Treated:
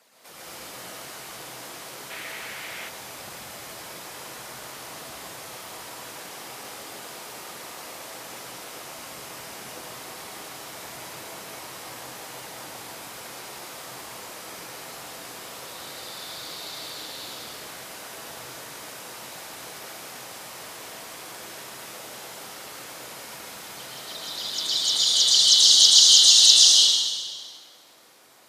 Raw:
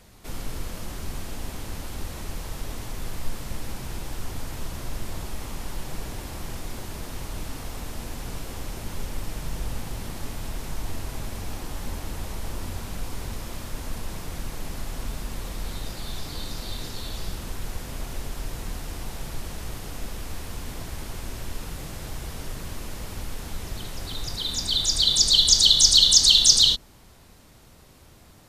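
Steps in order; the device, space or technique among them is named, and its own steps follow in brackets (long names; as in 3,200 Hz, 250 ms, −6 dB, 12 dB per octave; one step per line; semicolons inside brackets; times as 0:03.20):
whispering ghost (random phases in short frames; high-pass filter 540 Hz 12 dB per octave; convolution reverb RT60 1.7 s, pre-delay 105 ms, DRR −5.5 dB)
0:02.10–0:02.89: drawn EQ curve 1,100 Hz 0 dB, 2,100 Hz +11 dB, 4,900 Hz 0 dB
level −4 dB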